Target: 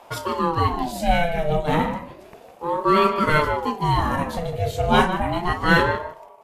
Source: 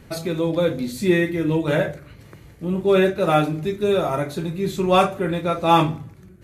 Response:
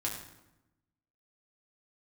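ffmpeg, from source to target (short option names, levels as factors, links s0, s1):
-filter_complex "[0:a]asplit=2[s0][s1];[s1]adelay=153,lowpass=f=2300:p=1,volume=0.355,asplit=2[s2][s3];[s3]adelay=153,lowpass=f=2300:p=1,volume=0.16[s4];[s0][s2][s4]amix=inputs=3:normalize=0,aeval=exprs='val(0)*sin(2*PI*540*n/s+540*0.45/0.32*sin(2*PI*0.32*n/s))':c=same,volume=1.26"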